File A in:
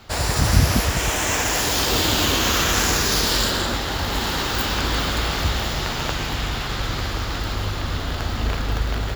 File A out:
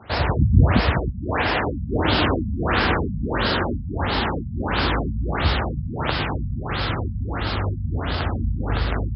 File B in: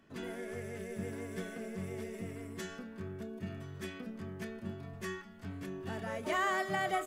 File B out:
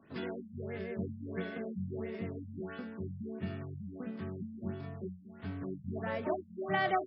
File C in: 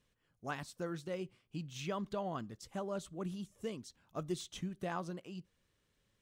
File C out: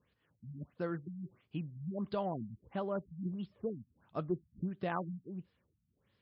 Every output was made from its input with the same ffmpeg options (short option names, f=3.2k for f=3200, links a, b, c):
-filter_complex "[0:a]highpass=f=56:w=0.5412,highpass=f=56:w=1.3066,acrossover=split=3000[a][b];[b]acompressor=threshold=-28dB:ratio=4:attack=1:release=60[c];[a][c]amix=inputs=2:normalize=0,afftfilt=real='re*lt(b*sr/1024,220*pow(5500/220,0.5+0.5*sin(2*PI*1.5*pts/sr)))':imag='im*lt(b*sr/1024,220*pow(5500/220,0.5+0.5*sin(2*PI*1.5*pts/sr)))':win_size=1024:overlap=0.75,volume=3dB"